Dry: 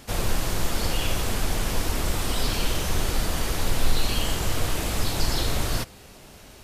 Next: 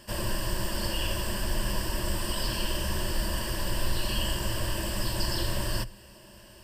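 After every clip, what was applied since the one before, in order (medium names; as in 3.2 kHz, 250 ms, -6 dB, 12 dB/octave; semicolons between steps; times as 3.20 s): rippled EQ curve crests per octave 1.3, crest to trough 13 dB; trim -6 dB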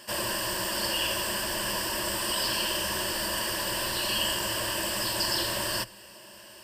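high-pass 560 Hz 6 dB/octave; trim +5.5 dB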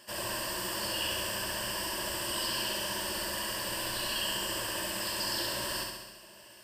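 flutter echo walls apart 11.5 m, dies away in 1.1 s; trim -7 dB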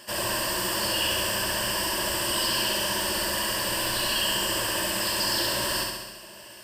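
saturation -23.5 dBFS, distortion -25 dB; trim +8 dB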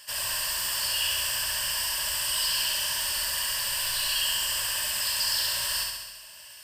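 amplifier tone stack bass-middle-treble 10-0-10; trim +1.5 dB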